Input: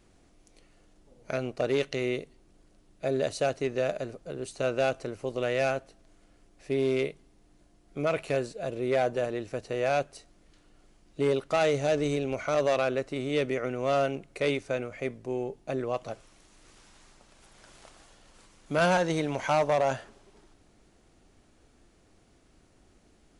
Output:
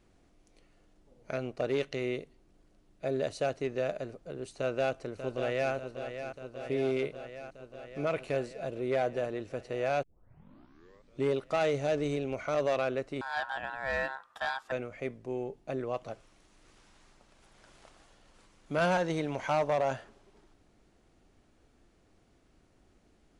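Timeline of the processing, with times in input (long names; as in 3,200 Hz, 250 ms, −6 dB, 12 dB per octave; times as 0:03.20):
0:04.56–0:05.73: delay throw 590 ms, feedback 75%, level −9 dB
0:10.03: tape start 1.24 s
0:13.21–0:14.72: ring modulation 1,200 Hz
whole clip: high-shelf EQ 5,600 Hz −7 dB; level −3.5 dB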